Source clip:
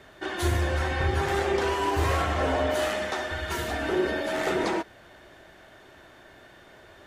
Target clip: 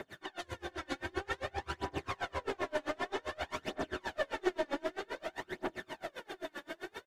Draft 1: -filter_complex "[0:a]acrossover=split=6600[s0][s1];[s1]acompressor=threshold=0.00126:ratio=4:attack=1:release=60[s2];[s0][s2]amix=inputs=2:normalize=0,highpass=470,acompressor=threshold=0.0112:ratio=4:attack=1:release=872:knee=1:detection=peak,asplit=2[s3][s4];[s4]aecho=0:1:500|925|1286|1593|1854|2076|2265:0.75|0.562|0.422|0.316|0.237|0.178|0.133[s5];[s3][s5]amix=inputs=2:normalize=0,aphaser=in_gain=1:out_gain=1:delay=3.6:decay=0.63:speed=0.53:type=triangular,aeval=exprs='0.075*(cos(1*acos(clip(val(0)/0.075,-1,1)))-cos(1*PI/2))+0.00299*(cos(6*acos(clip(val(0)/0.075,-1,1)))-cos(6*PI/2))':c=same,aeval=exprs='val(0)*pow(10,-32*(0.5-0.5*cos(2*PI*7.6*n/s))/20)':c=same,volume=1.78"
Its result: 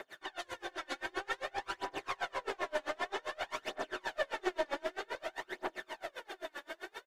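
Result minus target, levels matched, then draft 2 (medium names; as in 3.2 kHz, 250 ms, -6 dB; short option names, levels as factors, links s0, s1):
125 Hz band -14.5 dB
-filter_complex "[0:a]acrossover=split=6600[s0][s1];[s1]acompressor=threshold=0.00126:ratio=4:attack=1:release=60[s2];[s0][s2]amix=inputs=2:normalize=0,highpass=150,acompressor=threshold=0.0112:ratio=4:attack=1:release=872:knee=1:detection=peak,asplit=2[s3][s4];[s4]aecho=0:1:500|925|1286|1593|1854|2076|2265:0.75|0.562|0.422|0.316|0.237|0.178|0.133[s5];[s3][s5]amix=inputs=2:normalize=0,aphaser=in_gain=1:out_gain=1:delay=3.6:decay=0.63:speed=0.53:type=triangular,aeval=exprs='0.075*(cos(1*acos(clip(val(0)/0.075,-1,1)))-cos(1*PI/2))+0.00299*(cos(6*acos(clip(val(0)/0.075,-1,1)))-cos(6*PI/2))':c=same,aeval=exprs='val(0)*pow(10,-32*(0.5-0.5*cos(2*PI*7.6*n/s))/20)':c=same,volume=1.78"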